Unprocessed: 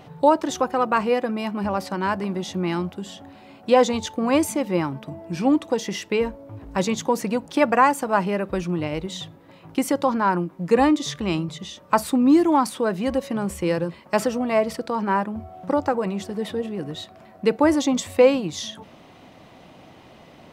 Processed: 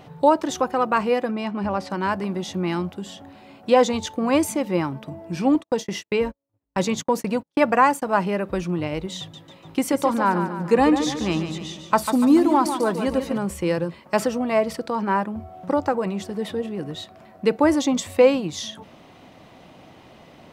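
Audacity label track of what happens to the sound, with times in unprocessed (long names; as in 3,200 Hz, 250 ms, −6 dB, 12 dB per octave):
1.310000	1.900000	high-frequency loss of the air 58 metres
5.550000	8.020000	noise gate −32 dBFS, range −44 dB
9.190000	13.380000	repeating echo 145 ms, feedback 50%, level −8.5 dB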